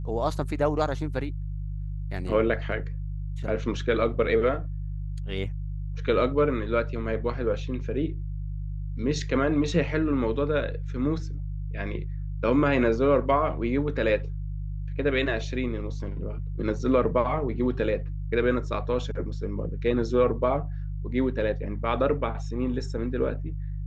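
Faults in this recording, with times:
hum 50 Hz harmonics 3 -32 dBFS

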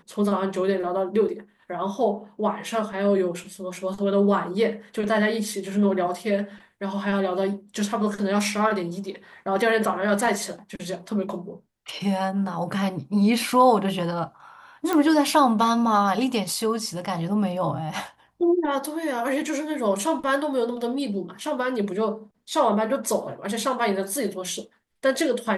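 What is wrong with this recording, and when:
14.93 pop -10 dBFS

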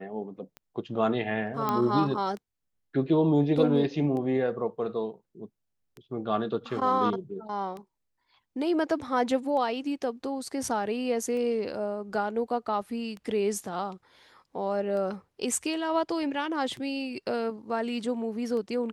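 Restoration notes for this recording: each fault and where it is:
tick 33 1/3 rpm -27 dBFS
1.69 pop -14 dBFS

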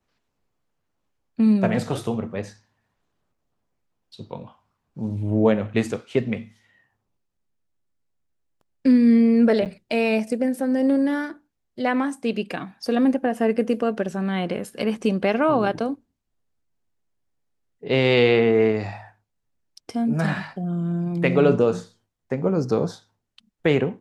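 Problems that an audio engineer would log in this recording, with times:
9.65–9.66 gap 8.3 ms

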